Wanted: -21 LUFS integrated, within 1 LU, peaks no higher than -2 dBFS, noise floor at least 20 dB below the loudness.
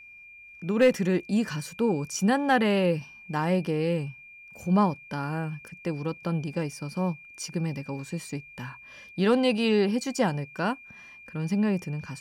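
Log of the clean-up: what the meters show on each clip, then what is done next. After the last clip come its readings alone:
steady tone 2.4 kHz; tone level -46 dBFS; loudness -27.5 LUFS; peak level -12.0 dBFS; loudness target -21.0 LUFS
-> band-stop 2.4 kHz, Q 30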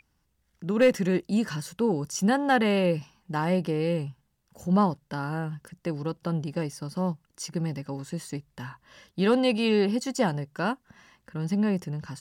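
steady tone not found; loudness -27.5 LUFS; peak level -12.0 dBFS; loudness target -21.0 LUFS
-> trim +6.5 dB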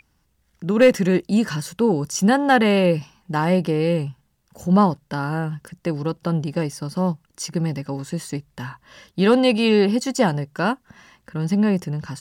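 loudness -21.0 LUFS; peak level -5.5 dBFS; noise floor -66 dBFS

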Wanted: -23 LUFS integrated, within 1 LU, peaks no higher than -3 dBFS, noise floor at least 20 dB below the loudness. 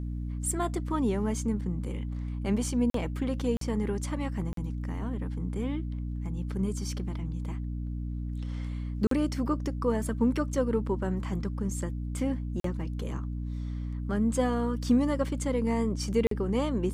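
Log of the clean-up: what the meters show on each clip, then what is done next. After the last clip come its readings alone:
dropouts 6; longest dropout 43 ms; hum 60 Hz; highest harmonic 300 Hz; hum level -31 dBFS; loudness -31.0 LUFS; peak level -13.5 dBFS; loudness target -23.0 LUFS
-> interpolate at 2.90/3.57/4.53/9.07/12.60/16.27 s, 43 ms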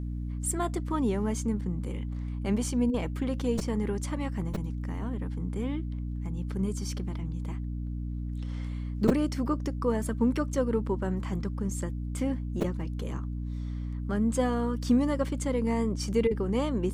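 dropouts 0; hum 60 Hz; highest harmonic 300 Hz; hum level -31 dBFS
-> de-hum 60 Hz, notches 5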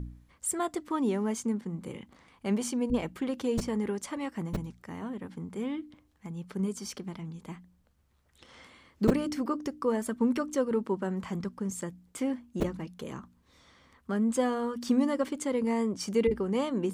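hum not found; loudness -31.5 LUFS; peak level -8.5 dBFS; loudness target -23.0 LUFS
-> trim +8.5 dB; peak limiter -3 dBFS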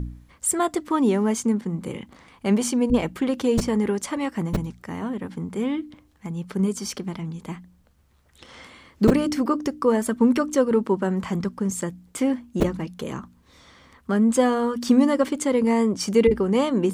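loudness -23.5 LUFS; peak level -3.0 dBFS; noise floor -58 dBFS

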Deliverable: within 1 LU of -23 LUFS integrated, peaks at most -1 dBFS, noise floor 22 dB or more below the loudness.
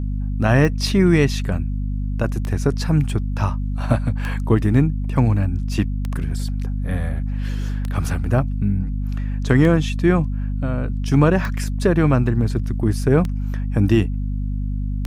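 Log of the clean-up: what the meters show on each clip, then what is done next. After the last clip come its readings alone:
clicks found 9; hum 50 Hz; highest harmonic 250 Hz; hum level -20 dBFS; loudness -20.5 LUFS; peak level -3.5 dBFS; loudness target -23.0 LUFS
-> de-click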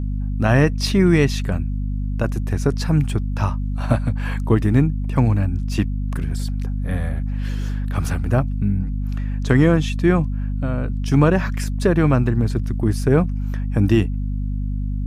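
clicks found 0; hum 50 Hz; highest harmonic 250 Hz; hum level -20 dBFS
-> hum notches 50/100/150/200/250 Hz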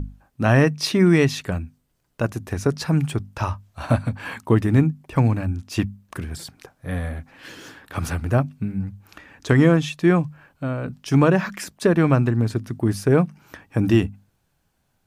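hum not found; loudness -21.5 LUFS; peak level -4.0 dBFS; loudness target -23.0 LUFS
-> trim -1.5 dB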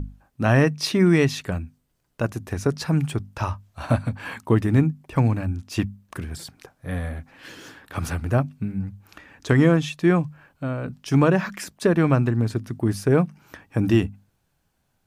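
loudness -23.0 LUFS; peak level -5.5 dBFS; noise floor -71 dBFS

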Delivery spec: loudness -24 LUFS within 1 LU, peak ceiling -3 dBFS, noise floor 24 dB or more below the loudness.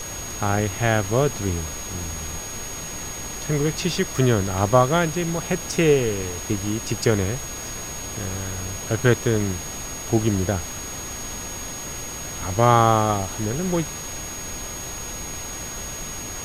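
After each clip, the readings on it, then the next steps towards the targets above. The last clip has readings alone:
steady tone 6.6 kHz; tone level -33 dBFS; noise floor -33 dBFS; noise floor target -48 dBFS; loudness -24.0 LUFS; peak level -2.5 dBFS; loudness target -24.0 LUFS
-> band-stop 6.6 kHz, Q 30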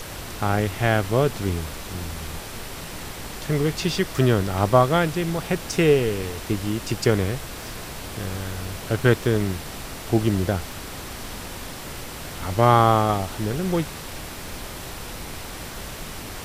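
steady tone not found; noise floor -36 dBFS; noise floor target -48 dBFS
-> noise print and reduce 12 dB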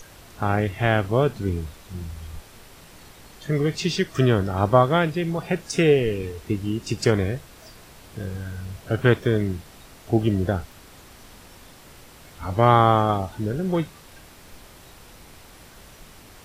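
noise floor -48 dBFS; loudness -22.5 LUFS; peak level -3.0 dBFS; loudness target -24.0 LUFS
-> trim -1.5 dB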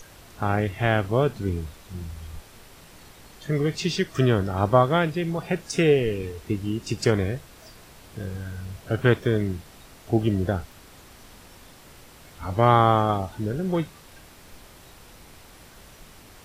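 loudness -24.0 LUFS; peak level -4.5 dBFS; noise floor -49 dBFS

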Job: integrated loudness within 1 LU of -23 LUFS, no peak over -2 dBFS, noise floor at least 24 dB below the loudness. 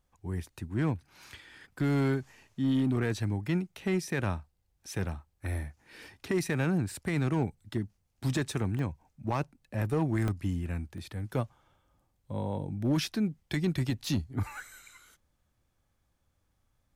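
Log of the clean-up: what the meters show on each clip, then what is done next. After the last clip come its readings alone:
clipped samples 0.9%; clipping level -21.5 dBFS; dropouts 4; longest dropout 1.1 ms; loudness -32.5 LUFS; peak level -21.5 dBFS; loudness target -23.0 LUFS
-> clip repair -21.5 dBFS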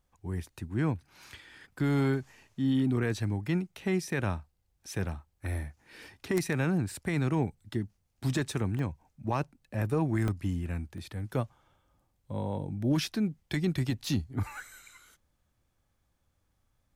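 clipped samples 0.0%; dropouts 4; longest dropout 1.1 ms
-> interpolate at 5.09/8.79/10.28/10.98 s, 1.1 ms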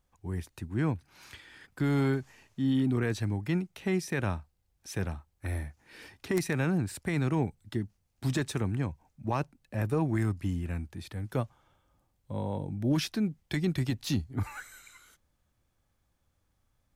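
dropouts 0; loudness -32.0 LUFS; peak level -12.5 dBFS; loudness target -23.0 LUFS
-> trim +9 dB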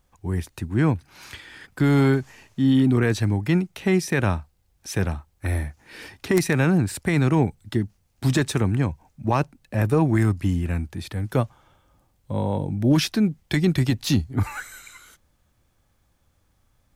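loudness -23.0 LUFS; peak level -3.5 dBFS; noise floor -66 dBFS

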